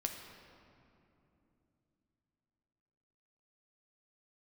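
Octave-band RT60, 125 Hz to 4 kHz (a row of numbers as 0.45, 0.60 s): 4.2, 4.2, 3.2, 2.7, 2.2, 1.6 s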